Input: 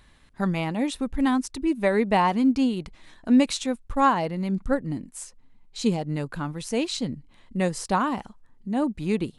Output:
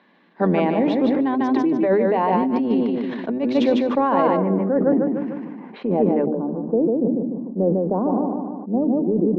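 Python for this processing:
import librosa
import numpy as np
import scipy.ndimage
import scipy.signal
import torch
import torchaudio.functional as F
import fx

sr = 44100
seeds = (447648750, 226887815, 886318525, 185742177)

y = fx.octave_divider(x, sr, octaves=1, level_db=-3.0)
y = scipy.signal.sosfilt(scipy.signal.butter(8, 190.0, 'highpass', fs=sr, output='sos'), y)
y = fx.high_shelf(y, sr, hz=2200.0, db=-9.0)
y = fx.notch(y, sr, hz=1300.0, q=9.5)
y = fx.echo_feedback(y, sr, ms=149, feedback_pct=35, wet_db=-6.5)
y = fx.over_compress(y, sr, threshold_db=-25.0, ratio=-1.0)
y = fx.bessel_lowpass(y, sr, hz=fx.steps((0.0, 2900.0), (4.36, 1400.0), (6.25, 520.0)), order=6)
y = fx.dynamic_eq(y, sr, hz=490.0, q=1.1, threshold_db=-40.0, ratio=4.0, max_db=6)
y = fx.hum_notches(y, sr, base_hz=50, count=6)
y = fx.sustainer(y, sr, db_per_s=29.0)
y = F.gain(torch.from_numpy(y), 4.5).numpy()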